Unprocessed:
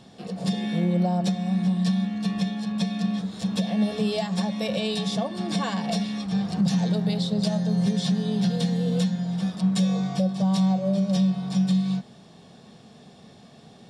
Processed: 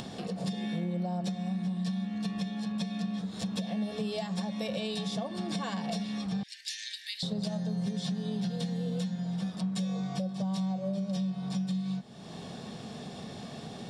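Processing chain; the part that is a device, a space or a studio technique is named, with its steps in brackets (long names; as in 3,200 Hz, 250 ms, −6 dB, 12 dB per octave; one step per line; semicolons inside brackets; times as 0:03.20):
0:06.43–0:07.23: Butterworth high-pass 1,700 Hz 96 dB per octave
upward and downward compression (upward compression, threshold −33 dBFS; downward compressor 3 to 1, threshold −33 dBFS, peak gain reduction 11 dB)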